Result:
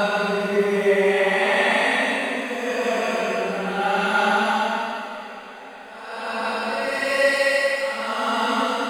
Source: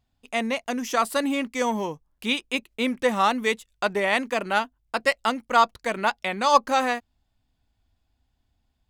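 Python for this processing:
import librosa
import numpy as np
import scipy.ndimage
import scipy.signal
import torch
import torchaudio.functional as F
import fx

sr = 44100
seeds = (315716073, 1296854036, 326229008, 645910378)

y = fx.rev_double_slope(x, sr, seeds[0], early_s=0.45, late_s=4.1, knee_db=-22, drr_db=1.0)
y = fx.dmg_crackle(y, sr, seeds[1], per_s=170.0, level_db=-50.0)
y = fx.paulstretch(y, sr, seeds[2], factor=5.9, window_s=0.25, from_s=3.85)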